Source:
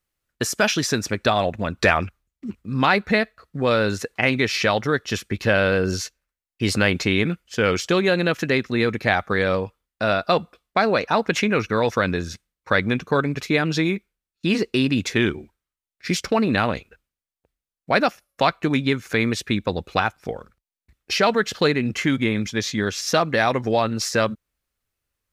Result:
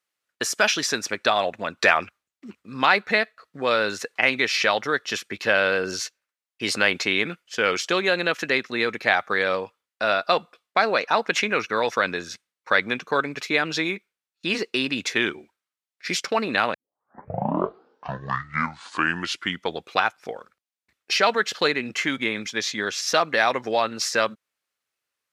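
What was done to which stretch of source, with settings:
16.74 s: tape start 3.25 s
whole clip: frequency weighting A

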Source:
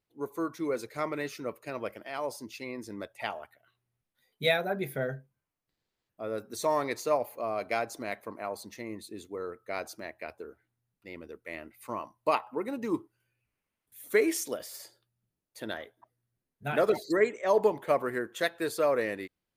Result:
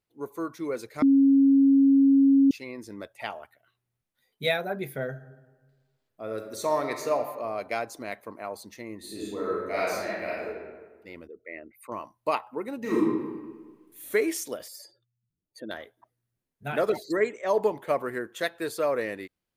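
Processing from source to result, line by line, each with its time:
1.02–2.51 s: bleep 274 Hz -15 dBFS
5.09–7.20 s: reverb throw, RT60 1.4 s, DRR 5.5 dB
8.98–10.46 s: reverb throw, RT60 1.4 s, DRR -8 dB
11.27–11.92 s: resonances exaggerated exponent 2
12.79–14.07 s: reverb throw, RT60 1.4 s, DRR -8 dB
14.68–15.71 s: spectral contrast enhancement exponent 2.1

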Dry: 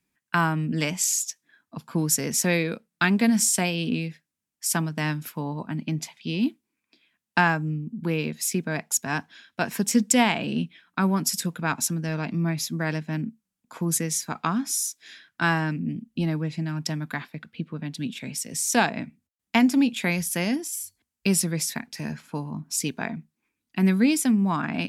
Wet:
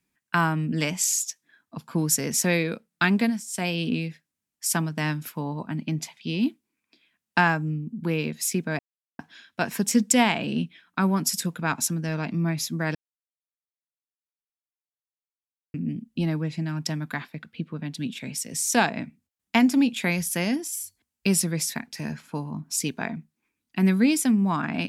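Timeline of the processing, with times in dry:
3.19–3.71 s: dip -19.5 dB, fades 0.24 s
8.79–9.19 s: mute
12.95–15.74 s: mute

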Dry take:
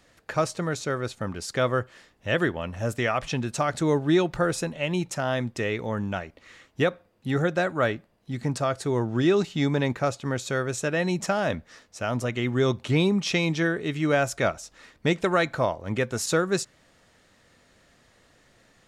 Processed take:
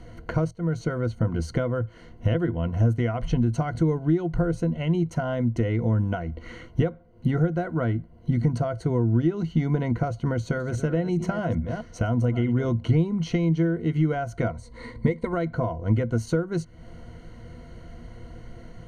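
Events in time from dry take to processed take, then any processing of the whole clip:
0.51–1.04 s: fade in, from -19.5 dB
10.33–12.69 s: chunks repeated in reverse 211 ms, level -12.5 dB
14.50–15.33 s: rippled EQ curve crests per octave 0.98, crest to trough 11 dB
whole clip: rippled EQ curve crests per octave 1.9, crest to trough 14 dB; compression 4:1, threshold -38 dBFS; tilt EQ -4 dB/octave; trim +7 dB

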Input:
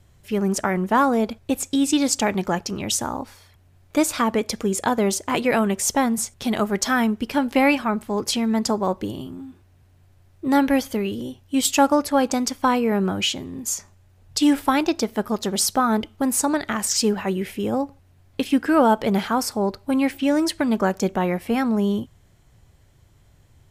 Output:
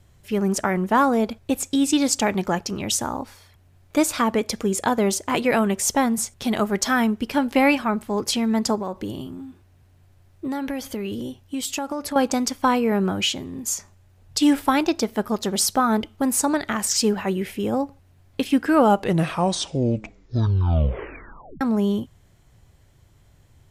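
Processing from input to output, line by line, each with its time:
8.75–12.16 s: compression, threshold -24 dBFS
18.72 s: tape stop 2.89 s

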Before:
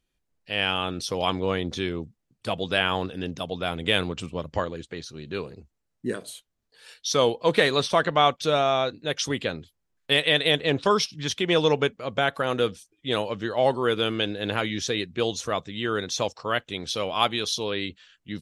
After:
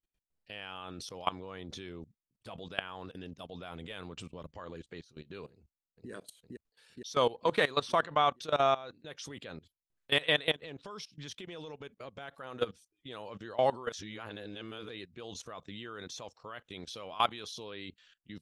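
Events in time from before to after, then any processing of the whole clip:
5.51–6.10 s: echo throw 460 ms, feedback 50%, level -0.5 dB
10.52–12.35 s: compression 4:1, threshold -30 dBFS
13.92–14.89 s: reverse
whole clip: dynamic bell 1.1 kHz, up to +6 dB, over -35 dBFS, Q 1.1; level held to a coarse grid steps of 19 dB; trim -6 dB

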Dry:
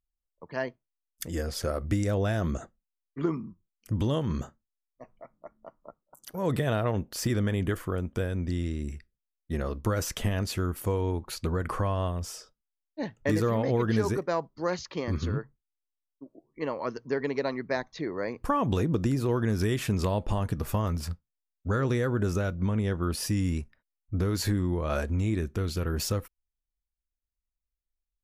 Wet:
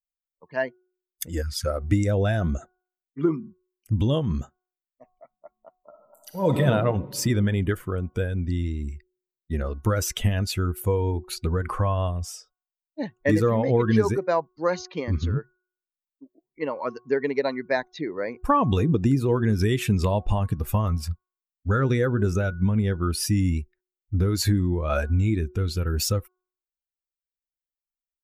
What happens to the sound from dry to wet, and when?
1.42–1.65 s: spectral selection erased 220–900 Hz
5.81–6.57 s: reverb throw, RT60 2.8 s, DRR -1 dB
whole clip: expander on every frequency bin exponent 1.5; de-hum 366.2 Hz, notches 4; trim +8 dB

